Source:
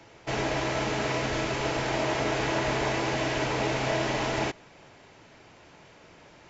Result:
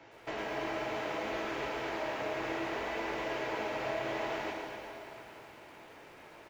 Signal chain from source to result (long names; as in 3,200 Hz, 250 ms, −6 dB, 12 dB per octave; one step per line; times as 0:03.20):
bass and treble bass −9 dB, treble −11 dB
downward compressor 6 to 1, threshold −35 dBFS, peak gain reduction 10 dB
chorus effect 0.61 Hz, delay 17 ms, depth 4.8 ms
single-tap delay 240 ms −10 dB
convolution reverb RT60 3.8 s, pre-delay 9 ms, DRR 3 dB
feedback echo at a low word length 112 ms, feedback 35%, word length 10 bits, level −6 dB
level +1.5 dB